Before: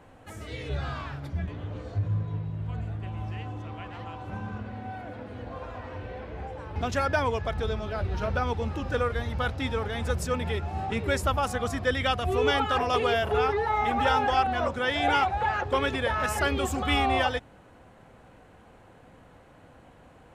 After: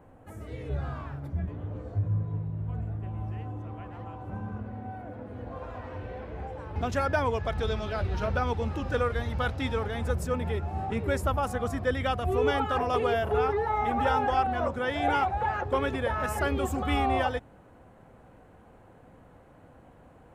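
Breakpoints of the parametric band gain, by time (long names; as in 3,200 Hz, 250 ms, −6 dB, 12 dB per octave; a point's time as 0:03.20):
parametric band 4,200 Hz 2.5 octaves
0:05.18 −15 dB
0:05.74 −5 dB
0:07.29 −5 dB
0:07.81 +4 dB
0:08.35 −2 dB
0:09.76 −2 dB
0:10.16 −9 dB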